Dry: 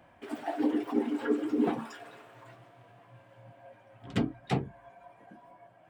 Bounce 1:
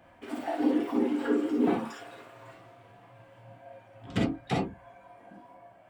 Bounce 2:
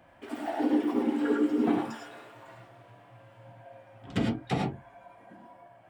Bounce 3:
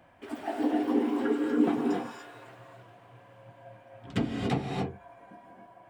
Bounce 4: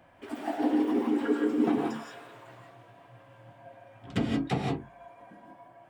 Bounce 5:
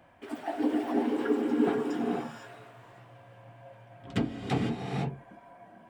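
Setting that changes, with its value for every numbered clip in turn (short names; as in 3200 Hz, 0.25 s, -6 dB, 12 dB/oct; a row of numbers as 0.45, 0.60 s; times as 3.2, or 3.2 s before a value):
non-linear reverb, gate: 80, 130, 310, 200, 530 ms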